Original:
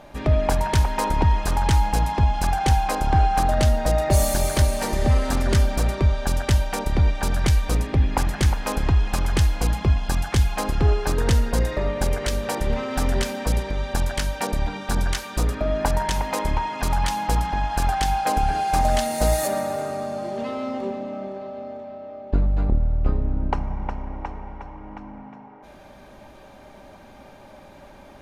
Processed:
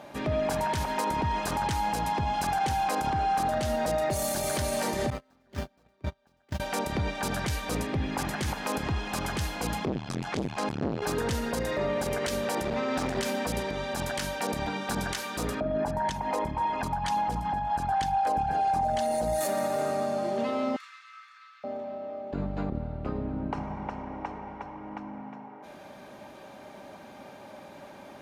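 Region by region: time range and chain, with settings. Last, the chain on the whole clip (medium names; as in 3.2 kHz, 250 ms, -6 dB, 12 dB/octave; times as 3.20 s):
5.10–6.60 s: median filter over 5 samples + gate -15 dBFS, range -38 dB
9.85–11.02 s: low-pass 7.3 kHz + transformer saturation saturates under 390 Hz
12.63–13.19 s: low-pass 7.6 kHz + band-stop 3 kHz + overload inside the chain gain 18.5 dB
15.60–19.41 s: resonances exaggerated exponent 1.5 + delay 241 ms -17.5 dB
20.76–21.64 s: steep high-pass 1.2 kHz 72 dB/octave + band-stop 3 kHz
whole clip: high-pass 140 Hz 12 dB/octave; peak limiter -20 dBFS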